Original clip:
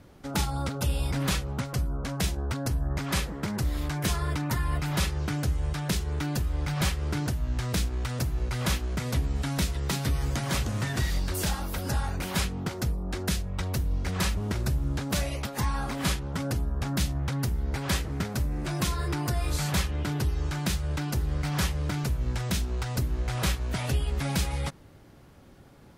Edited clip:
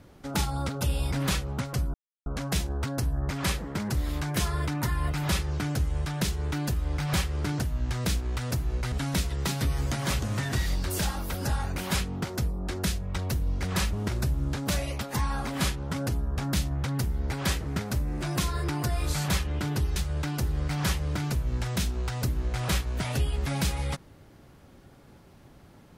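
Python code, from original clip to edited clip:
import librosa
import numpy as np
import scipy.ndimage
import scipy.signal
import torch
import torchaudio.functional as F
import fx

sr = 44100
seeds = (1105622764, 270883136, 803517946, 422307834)

y = fx.edit(x, sr, fx.insert_silence(at_s=1.94, length_s=0.32),
    fx.cut(start_s=8.6, length_s=0.76),
    fx.cut(start_s=20.4, length_s=0.3), tone=tone)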